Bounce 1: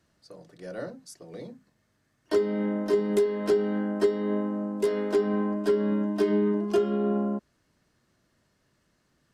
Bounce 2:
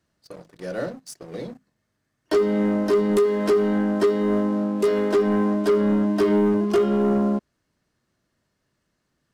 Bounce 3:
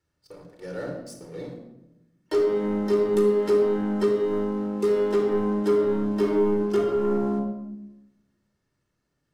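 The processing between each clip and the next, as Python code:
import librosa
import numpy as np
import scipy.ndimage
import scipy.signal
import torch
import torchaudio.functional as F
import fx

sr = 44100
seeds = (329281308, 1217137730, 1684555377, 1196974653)

y1 = fx.leveller(x, sr, passes=2)
y2 = fx.room_shoebox(y1, sr, seeds[0], volume_m3=3400.0, walls='furnished', distance_m=4.3)
y2 = F.gain(torch.from_numpy(y2), -8.0).numpy()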